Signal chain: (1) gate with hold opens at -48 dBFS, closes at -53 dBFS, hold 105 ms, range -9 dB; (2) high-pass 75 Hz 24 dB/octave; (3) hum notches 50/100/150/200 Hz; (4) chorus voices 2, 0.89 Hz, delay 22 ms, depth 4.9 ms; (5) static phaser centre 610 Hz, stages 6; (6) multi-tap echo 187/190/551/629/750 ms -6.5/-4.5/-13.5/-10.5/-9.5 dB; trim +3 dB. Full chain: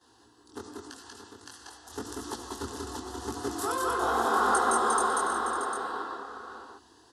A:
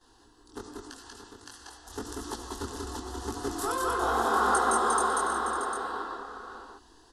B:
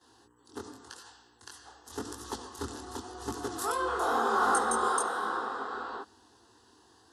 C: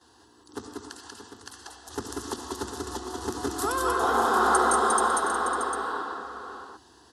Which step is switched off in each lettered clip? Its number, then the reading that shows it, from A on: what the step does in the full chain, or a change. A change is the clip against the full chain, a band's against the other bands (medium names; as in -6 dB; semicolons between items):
2, 125 Hz band +3.0 dB; 6, echo-to-direct -1.0 dB to none; 4, loudness change +3.0 LU